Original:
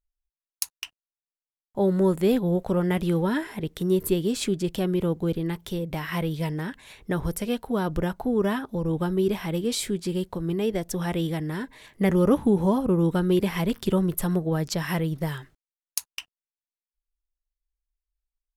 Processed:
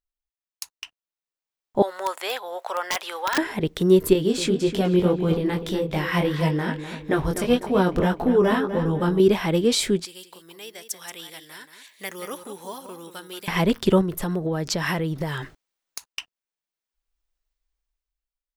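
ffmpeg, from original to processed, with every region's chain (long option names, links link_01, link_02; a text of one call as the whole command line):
ffmpeg -i in.wav -filter_complex "[0:a]asettb=1/sr,asplit=3[link_01][link_02][link_03];[link_01]atrim=end=1.824[link_04];[link_02]atrim=start=1.82:end=3.38,asetpts=PTS-STARTPTS,afade=type=in:duration=0.004:curve=qsin,afade=type=out:start_time=1.556:duration=0.004:curve=qsin,highpass=frequency=760:width=0.5412,highpass=frequency=760:width=1.3066,aeval=exprs='(mod(15*val(0)+1,2)-1)/15':channel_layout=same[link_05];[link_03]atrim=start=3.376[link_06];[link_04][link_05]acrossfade=duration=0.004:curve1=hsin:curve2=qsin[link_07];[link_07][link_06]acrossfade=duration=0.004:curve1=qsin:curve2=hsin,asettb=1/sr,asplit=3[link_08][link_09][link_10];[link_08]atrim=end=4.134[link_11];[link_09]atrim=start=4.13:end=9.2,asetpts=PTS-STARTPTS,afade=type=in:duration=0.004:curve=qsin,afade=type=out:start_time=5.066:duration=0.004:curve=qsin,flanger=delay=19:depth=3.7:speed=1.7,asplit=2[link_12][link_13];[link_13]adelay=249,lowpass=frequency=4000:poles=1,volume=-10dB,asplit=2[link_14][link_15];[link_15]adelay=249,lowpass=frequency=4000:poles=1,volume=0.43,asplit=2[link_16][link_17];[link_17]adelay=249,lowpass=frequency=4000:poles=1,volume=0.43,asplit=2[link_18][link_19];[link_19]adelay=249,lowpass=frequency=4000:poles=1,volume=0.43,asplit=2[link_20][link_21];[link_21]adelay=249,lowpass=frequency=4000:poles=1,volume=0.43[link_22];[link_12][link_14][link_16][link_18][link_20][link_22]amix=inputs=6:normalize=0,atrim=end_sample=223587[link_23];[link_10]atrim=start=9.196[link_24];[link_11][link_23]acrossfade=duration=0.004:curve1=hsin:curve2=qsin[link_25];[link_25][link_24]acrossfade=duration=0.004:curve1=qsin:curve2=hsin,asettb=1/sr,asplit=3[link_26][link_27][link_28];[link_26]atrim=end=10.054[link_29];[link_27]atrim=start=10.05:end=13.48,asetpts=PTS-STARTPTS,afade=type=in:duration=0.004:curve=qsin,afade=type=out:start_time=3.426:duration=0.004:curve=qsin,aderivative,aecho=1:1:180:0.335,atrim=end_sample=151263[link_30];[link_28]atrim=start=13.476[link_31];[link_29][link_30]acrossfade=duration=0.004:curve1=hsin:curve2=qsin[link_32];[link_32][link_31]acrossfade=duration=0.004:curve1=qsin:curve2=hsin,asettb=1/sr,asplit=3[link_33][link_34][link_35];[link_33]atrim=end=14.014[link_36];[link_34]atrim=start=14.01:end=16.06,asetpts=PTS-STARTPTS,afade=type=in:duration=0.004:curve=qsin,afade=type=out:start_time=2.046:duration=0.004:curve=qsin,acompressor=threshold=-39dB:ratio=5:attack=3.2:release=140:knee=1:detection=peak,aeval=exprs='0.251*sin(PI/2*2*val(0)/0.251)':channel_layout=same[link_37];[link_35]atrim=start=16.056[link_38];[link_36][link_37]acrossfade=duration=0.004:curve1=hsin:curve2=qsin[link_39];[link_39][link_38]acrossfade=duration=0.004:curve1=qsin:curve2=hsin,bass=frequency=250:gain=-5,treble=frequency=4000:gain=4,dynaudnorm=framelen=120:gausssize=13:maxgain=13dB,equalizer=frequency=13000:width=0.42:gain=-12.5,volume=-2.5dB" out.wav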